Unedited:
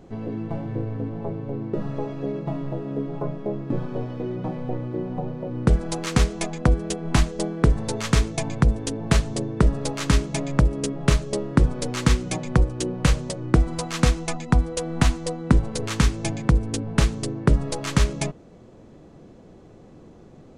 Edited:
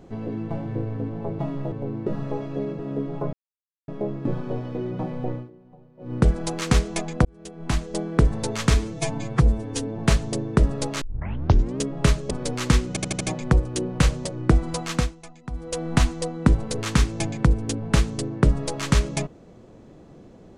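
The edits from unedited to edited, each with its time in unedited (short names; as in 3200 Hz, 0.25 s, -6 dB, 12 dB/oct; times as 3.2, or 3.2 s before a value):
2.46–2.79 move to 1.39
3.33 insert silence 0.55 s
4.79–5.59 dip -21.5 dB, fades 0.16 s
6.7–7.57 fade in
8.19–9.02 stretch 1.5×
10.05 tape start 0.78 s
11.34–11.67 cut
12.25 stutter 0.08 s, 5 plays
13.92–14.84 dip -16 dB, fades 0.28 s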